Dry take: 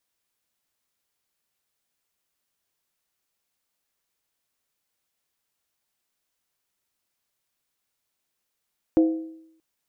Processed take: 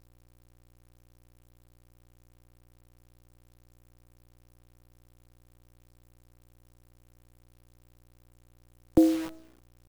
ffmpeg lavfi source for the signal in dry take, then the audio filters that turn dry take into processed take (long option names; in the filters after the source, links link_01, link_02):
-f lavfi -i "aevalsrc='0.237*pow(10,-3*t/0.76)*sin(2*PI*322*t)+0.075*pow(10,-3*t/0.602)*sin(2*PI*513.3*t)+0.0237*pow(10,-3*t/0.52)*sin(2*PI*687.8*t)+0.0075*pow(10,-3*t/0.502)*sin(2*PI*739.3*t)+0.00237*pow(10,-3*t/0.467)*sin(2*PI*854.3*t)':duration=0.63:sample_rate=44100"
-filter_complex "[0:a]acrossover=split=180|210|490[link_01][link_02][link_03][link_04];[link_01]dynaudnorm=framelen=400:gausssize=5:maxgain=6.5dB[link_05];[link_05][link_02][link_03][link_04]amix=inputs=4:normalize=0,aeval=exprs='val(0)+0.00141*(sin(2*PI*60*n/s)+sin(2*PI*2*60*n/s)/2+sin(2*PI*3*60*n/s)/3+sin(2*PI*4*60*n/s)/4+sin(2*PI*5*60*n/s)/5)':channel_layout=same,acrusher=bits=7:dc=4:mix=0:aa=0.000001"